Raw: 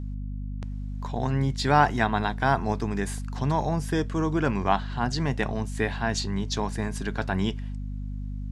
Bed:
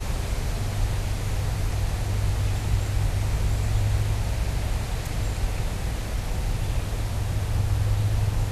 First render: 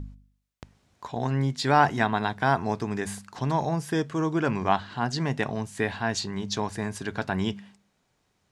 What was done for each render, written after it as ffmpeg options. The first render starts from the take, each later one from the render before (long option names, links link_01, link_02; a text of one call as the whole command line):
ffmpeg -i in.wav -af "bandreject=frequency=50:width_type=h:width=4,bandreject=frequency=100:width_type=h:width=4,bandreject=frequency=150:width_type=h:width=4,bandreject=frequency=200:width_type=h:width=4,bandreject=frequency=250:width_type=h:width=4" out.wav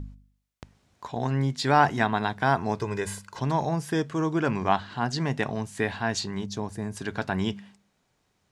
ffmpeg -i in.wav -filter_complex "[0:a]asettb=1/sr,asplit=3[link_01][link_02][link_03];[link_01]atrim=end=2.794[link_04];[link_02]atrim=start=2.79:end=3.4,asetpts=PTS-STARTPTS,afade=type=in:duration=0.004:curve=qsin,afade=type=out:start_time=0.606:duration=0.004:curve=qsin,aecho=1:1:2:0.65,atrim=end_sample=26901[link_05];[link_03]atrim=start=3.396[link_06];[link_04][link_05]acrossfade=duration=0.004:curve1=hsin:curve2=qsin[link_07];[link_07][link_06]acrossfade=duration=0.004:curve1=qsin:curve2=hsin,asettb=1/sr,asplit=3[link_08][link_09][link_10];[link_08]atrim=end=6.464[link_11];[link_09]atrim=start=6.46:end=6.97,asetpts=PTS-STARTPTS,afade=type=in:duration=0.004:curve=qsin,afade=type=out:start_time=0.506:duration=0.004:curve=qsin,equalizer=frequency=2300:width=0.32:gain=-10[link_12];[link_10]atrim=start=6.966[link_13];[link_11][link_12]acrossfade=duration=0.004:curve1=hsin:curve2=qsin[link_14];[link_14][link_13]acrossfade=duration=0.004:curve1=qsin:curve2=hsin" out.wav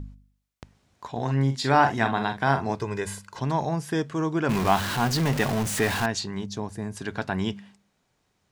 ffmpeg -i in.wav -filter_complex "[0:a]asettb=1/sr,asplit=3[link_01][link_02][link_03];[link_01]atrim=end=1.114[link_04];[link_02]atrim=start=1.11:end=2.75,asetpts=PTS-STARTPTS,afade=type=in:duration=0.004:curve=qsin,afade=type=out:start_time=1.636:duration=0.004:curve=qsin,asplit=2[link_05][link_06];[link_06]adelay=44,volume=-8dB[link_07];[link_05][link_07]amix=inputs=2:normalize=0,atrim=end_sample=72324[link_08];[link_03]atrim=start=2.746[link_09];[link_04][link_08]acrossfade=duration=0.004:curve1=hsin:curve2=qsin[link_10];[link_10][link_09]acrossfade=duration=0.004:curve1=qsin:curve2=hsin,asettb=1/sr,asplit=3[link_11][link_12][link_13];[link_11]atrim=end=4.494[link_14];[link_12]atrim=start=4.49:end=6.06,asetpts=PTS-STARTPTS,afade=type=in:duration=0.004:curve=qsin,afade=type=out:start_time=1.566:duration=0.004:curve=qsin,aeval=exprs='val(0)+0.5*0.0596*sgn(val(0))':channel_layout=same[link_15];[link_13]atrim=start=6.056[link_16];[link_14][link_15]acrossfade=duration=0.004:curve1=hsin:curve2=qsin[link_17];[link_17][link_16]acrossfade=duration=0.004:curve1=qsin:curve2=hsin" out.wav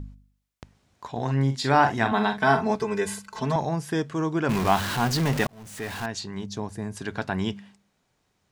ffmpeg -i in.wav -filter_complex "[0:a]asettb=1/sr,asplit=3[link_01][link_02][link_03];[link_01]atrim=end=2.114[link_04];[link_02]atrim=start=2.11:end=3.56,asetpts=PTS-STARTPTS,afade=type=in:duration=0.004:curve=qsin,afade=type=out:start_time=1.446:duration=0.004:curve=qsin,aecho=1:1:4.6:0.93,atrim=end_sample=63945[link_05];[link_03]atrim=start=3.556[link_06];[link_04][link_05]acrossfade=duration=0.004:curve1=hsin:curve2=qsin[link_07];[link_07][link_06]acrossfade=duration=0.004:curve1=qsin:curve2=hsin,asplit=2[link_08][link_09];[link_08]atrim=end=5.47,asetpts=PTS-STARTPTS,afade=type=out:start_time=5.466:duration=0.004:curve=hsin[link_10];[link_09]atrim=start=5.47,asetpts=PTS-STARTPTS,afade=type=in:duration=1.12[link_11];[link_10][link_11]concat=n=2:v=0:a=1" out.wav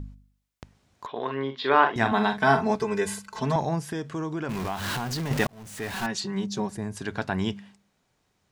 ffmpeg -i in.wav -filter_complex "[0:a]asettb=1/sr,asplit=3[link_01][link_02][link_03];[link_01]atrim=end=1.064[link_04];[link_02]atrim=start=1.06:end=1.96,asetpts=PTS-STARTPTS,afade=type=in:duration=0.004:curve=qsin,afade=type=out:start_time=0.896:duration=0.004:curve=qsin,highpass=360,equalizer=frequency=420:width_type=q:width=4:gain=7,equalizer=frequency=780:width_type=q:width=4:gain=-7,equalizer=frequency=1100:width_type=q:width=4:gain=7,equalizer=frequency=3400:width_type=q:width=4:gain=8,lowpass=frequency=3400:width=0.5412,lowpass=frequency=3400:width=1.3066[link_05];[link_03]atrim=start=1.956[link_06];[link_04][link_05]acrossfade=duration=0.004:curve1=hsin:curve2=qsin[link_07];[link_07][link_06]acrossfade=duration=0.004:curve1=qsin:curve2=hsin,asettb=1/sr,asplit=3[link_08][link_09][link_10];[link_08]atrim=end=3.794[link_11];[link_09]atrim=start=3.79:end=5.31,asetpts=PTS-STARTPTS,afade=type=in:duration=0.004:curve=qsin,afade=type=out:start_time=1.516:duration=0.004:curve=qsin,acompressor=threshold=-28dB:ratio=4:attack=3.2:release=140:knee=1:detection=peak[link_12];[link_10]atrim=start=5.306[link_13];[link_11][link_12]acrossfade=duration=0.004:curve1=hsin:curve2=qsin[link_14];[link_14][link_13]acrossfade=duration=0.004:curve1=qsin:curve2=hsin,asettb=1/sr,asplit=3[link_15][link_16][link_17];[link_15]atrim=end=5.934[link_18];[link_16]atrim=start=5.93:end=6.77,asetpts=PTS-STARTPTS,afade=type=in:duration=0.004:curve=qsin,afade=type=out:start_time=0.836:duration=0.004:curve=qsin,aecho=1:1:5.3:0.99,atrim=end_sample=37044[link_19];[link_17]atrim=start=6.766[link_20];[link_18][link_19]acrossfade=duration=0.004:curve1=hsin:curve2=qsin[link_21];[link_21][link_20]acrossfade=duration=0.004:curve1=qsin:curve2=hsin" out.wav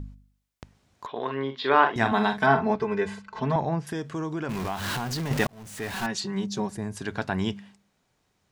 ffmpeg -i in.wav -filter_complex "[0:a]asettb=1/sr,asplit=3[link_01][link_02][link_03];[link_01]atrim=end=2.464[link_04];[link_02]atrim=start=2.46:end=3.87,asetpts=PTS-STARTPTS,afade=type=in:duration=0.004:curve=qsin,afade=type=out:start_time=1.406:duration=0.004:curve=qsin,lowpass=3000[link_05];[link_03]atrim=start=3.866[link_06];[link_04][link_05]acrossfade=duration=0.004:curve1=hsin:curve2=qsin[link_07];[link_07][link_06]acrossfade=duration=0.004:curve1=qsin:curve2=hsin" out.wav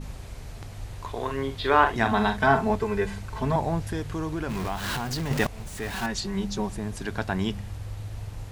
ffmpeg -i in.wav -i bed.wav -filter_complex "[1:a]volume=-12.5dB[link_01];[0:a][link_01]amix=inputs=2:normalize=0" out.wav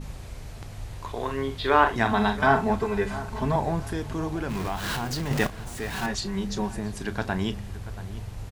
ffmpeg -i in.wav -filter_complex "[0:a]asplit=2[link_01][link_02];[link_02]adelay=34,volume=-13.5dB[link_03];[link_01][link_03]amix=inputs=2:normalize=0,asplit=2[link_04][link_05];[link_05]adelay=681,lowpass=frequency=2100:poles=1,volume=-15dB,asplit=2[link_06][link_07];[link_07]adelay=681,lowpass=frequency=2100:poles=1,volume=0.33,asplit=2[link_08][link_09];[link_09]adelay=681,lowpass=frequency=2100:poles=1,volume=0.33[link_10];[link_04][link_06][link_08][link_10]amix=inputs=4:normalize=0" out.wav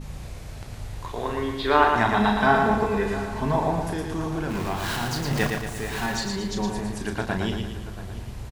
ffmpeg -i in.wav -filter_complex "[0:a]asplit=2[link_01][link_02];[link_02]adelay=34,volume=-13dB[link_03];[link_01][link_03]amix=inputs=2:normalize=0,aecho=1:1:114|228|342|456|570|684:0.596|0.286|0.137|0.0659|0.0316|0.0152" out.wav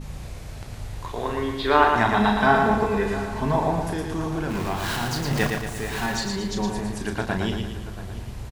ffmpeg -i in.wav -af "volume=1dB" out.wav